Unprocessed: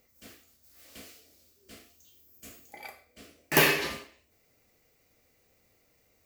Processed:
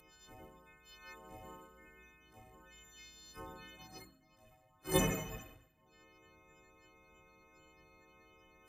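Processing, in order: partials quantised in pitch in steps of 3 st; spectral gate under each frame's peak -20 dB weak; peaking EQ 290 Hz -8 dB 0.22 oct; wide varispeed 0.72×; de-hum 66.43 Hz, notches 5; trim +8 dB

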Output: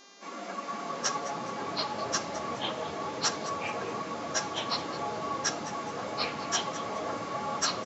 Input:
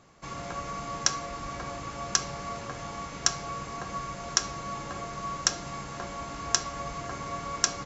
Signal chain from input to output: phase randomisation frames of 50 ms; steep high-pass 190 Hz 96 dB/octave; treble shelf 3.8 kHz -8 dB; mains buzz 400 Hz, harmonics 17, -56 dBFS 0 dB/octave; ever faster or slower copies 378 ms, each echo -5 st, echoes 3; frequency-shifting echo 210 ms, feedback 34%, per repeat +140 Hz, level -15 dB

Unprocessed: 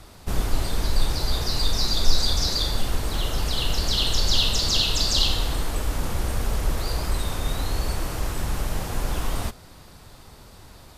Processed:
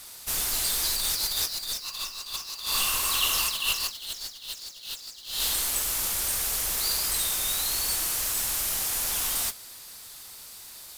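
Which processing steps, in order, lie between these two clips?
pre-emphasis filter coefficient 0.97; compressor with a negative ratio -37 dBFS, ratio -0.5; modulation noise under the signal 10 dB; 1.82–3.91 s: small resonant body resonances 1.1/2.7 kHz, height 17 dB -> 13 dB, ringing for 20 ms; trim +7.5 dB

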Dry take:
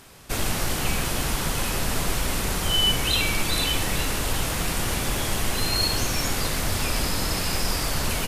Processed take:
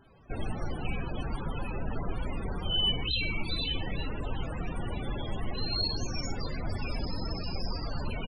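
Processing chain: echo from a far wall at 15 m, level -28 dB; loudest bins only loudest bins 32; trim -6 dB

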